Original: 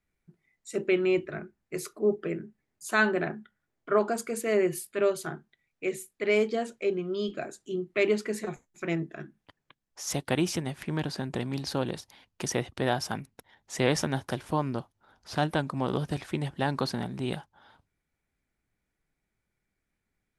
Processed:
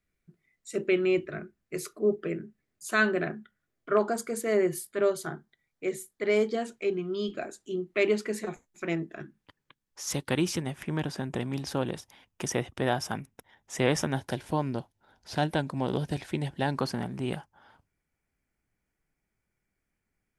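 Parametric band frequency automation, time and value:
parametric band −10.5 dB 0.23 octaves
870 Hz
from 0:03.97 2,600 Hz
from 0:06.55 550 Hz
from 0:07.35 140 Hz
from 0:09.21 690 Hz
from 0:10.62 4,300 Hz
from 0:14.18 1,200 Hz
from 0:16.78 3,800 Hz

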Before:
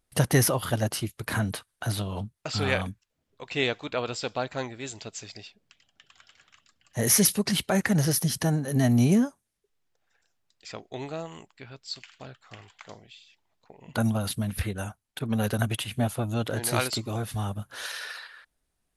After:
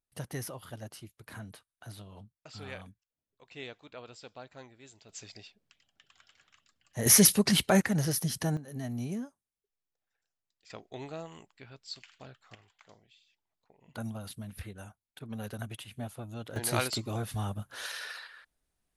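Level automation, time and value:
−17 dB
from 0:05.09 −6 dB
from 0:07.06 +1 dB
from 0:07.82 −5.5 dB
from 0:08.57 −15 dB
from 0:10.70 −6 dB
from 0:12.55 −13 dB
from 0:16.56 −3.5 dB

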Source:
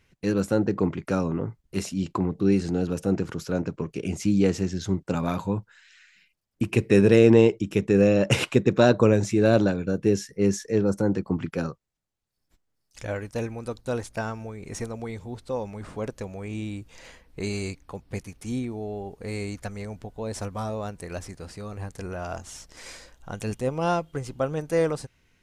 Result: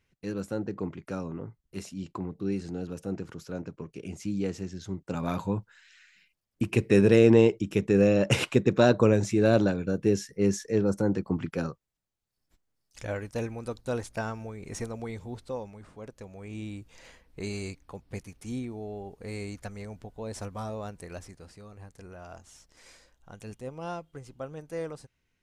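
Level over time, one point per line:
0:04.94 −9.5 dB
0:05.35 −2.5 dB
0:15.39 −2.5 dB
0:15.94 −13 dB
0:16.64 −5 dB
0:20.99 −5 dB
0:21.74 −12 dB

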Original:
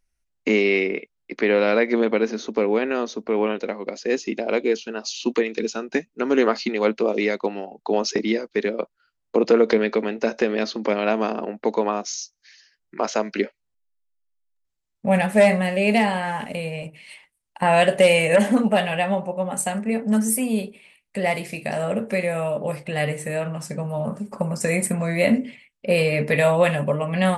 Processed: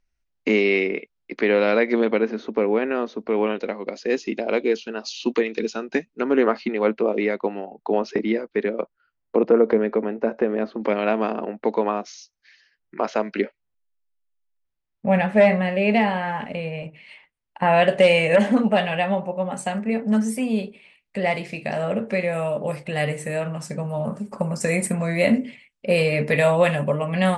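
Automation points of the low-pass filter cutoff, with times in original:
5,200 Hz
from 0:02.18 2,600 Hz
from 0:03.21 5,000 Hz
from 0:06.24 2,300 Hz
from 0:09.43 1,300 Hz
from 0:10.81 3,100 Hz
from 0:17.88 5,100 Hz
from 0:22.33 9,500 Hz

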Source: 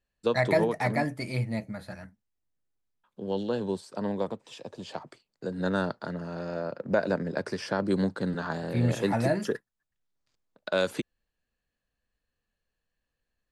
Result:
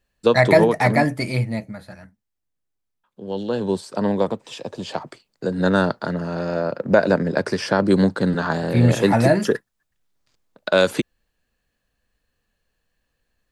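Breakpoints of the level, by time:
0:01.21 +10 dB
0:01.90 +1 dB
0:03.21 +1 dB
0:03.80 +10 dB

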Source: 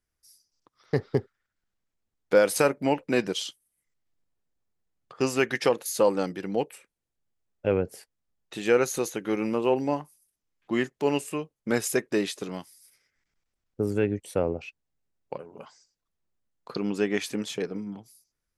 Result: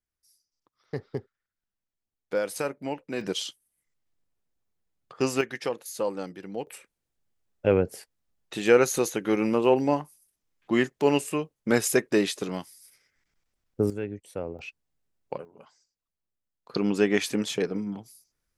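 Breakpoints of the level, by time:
−8 dB
from 0:03.21 0 dB
from 0:05.41 −7 dB
from 0:06.67 +3 dB
from 0:13.90 −8 dB
from 0:14.59 +1.5 dB
from 0:15.45 −7.5 dB
from 0:16.74 +3.5 dB

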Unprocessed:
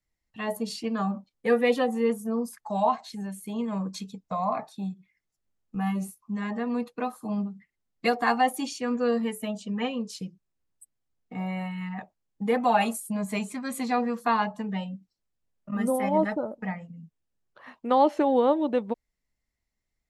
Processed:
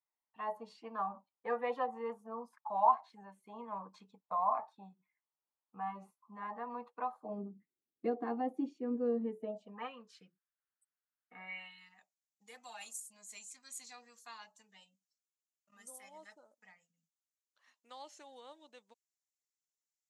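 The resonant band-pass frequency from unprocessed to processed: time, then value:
resonant band-pass, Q 3.3
0:07.07 960 Hz
0:07.50 340 Hz
0:09.35 340 Hz
0:09.94 1,500 Hz
0:11.35 1,500 Hz
0:11.97 6,800 Hz

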